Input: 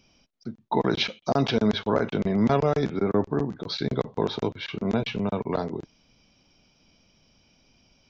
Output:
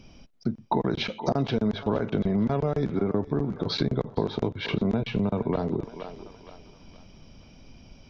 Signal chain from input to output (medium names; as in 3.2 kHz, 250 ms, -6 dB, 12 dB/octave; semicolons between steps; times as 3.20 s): tilt EQ -2 dB/octave; thinning echo 469 ms, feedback 42%, high-pass 510 Hz, level -17.5 dB; compression 6:1, threshold -31 dBFS, peak gain reduction 17 dB; trim +8 dB